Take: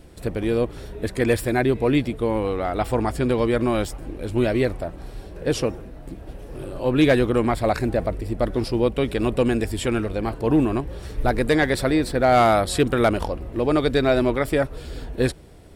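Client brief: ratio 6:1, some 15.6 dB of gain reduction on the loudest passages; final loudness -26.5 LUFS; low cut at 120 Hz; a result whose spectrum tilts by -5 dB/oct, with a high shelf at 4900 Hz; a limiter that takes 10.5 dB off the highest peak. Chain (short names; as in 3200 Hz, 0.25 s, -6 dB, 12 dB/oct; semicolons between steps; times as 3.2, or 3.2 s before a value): HPF 120 Hz; high shelf 4900 Hz +4.5 dB; compressor 6:1, threshold -30 dBFS; gain +12 dB; limiter -15.5 dBFS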